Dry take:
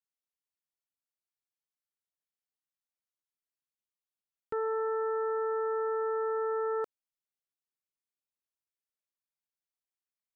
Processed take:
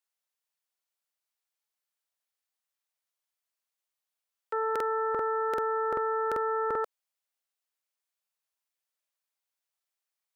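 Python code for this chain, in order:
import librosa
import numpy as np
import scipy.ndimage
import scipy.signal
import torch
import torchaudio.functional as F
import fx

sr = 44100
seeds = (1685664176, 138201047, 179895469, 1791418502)

y = scipy.signal.sosfilt(scipy.signal.butter(4, 510.0, 'highpass', fs=sr, output='sos'), x)
y = fx.buffer_crackle(y, sr, first_s=0.81, period_s=0.39, block=2048, kind='repeat')
y = F.gain(torch.from_numpy(y), 6.0).numpy()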